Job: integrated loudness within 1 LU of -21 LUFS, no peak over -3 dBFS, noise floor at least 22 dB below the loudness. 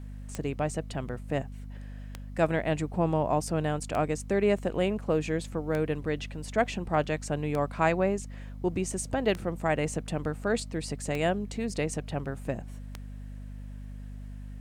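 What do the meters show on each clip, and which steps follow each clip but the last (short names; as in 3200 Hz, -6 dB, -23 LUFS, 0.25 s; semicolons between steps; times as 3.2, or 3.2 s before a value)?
clicks 8; hum 50 Hz; harmonics up to 250 Hz; hum level -38 dBFS; loudness -30.0 LUFS; peak -11.0 dBFS; loudness target -21.0 LUFS
-> de-click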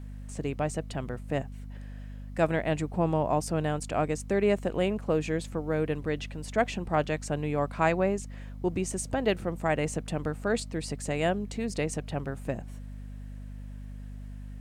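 clicks 0; hum 50 Hz; harmonics up to 250 Hz; hum level -38 dBFS
-> notches 50/100/150/200/250 Hz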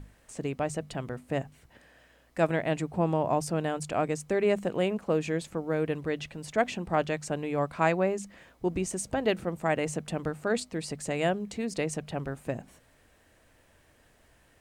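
hum none; loudness -30.5 LUFS; peak -11.0 dBFS; loudness target -21.0 LUFS
-> gain +9.5 dB; limiter -3 dBFS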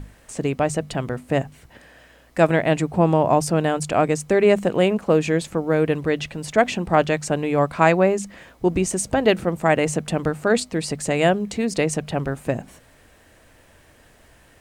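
loudness -21.0 LUFS; peak -3.0 dBFS; noise floor -53 dBFS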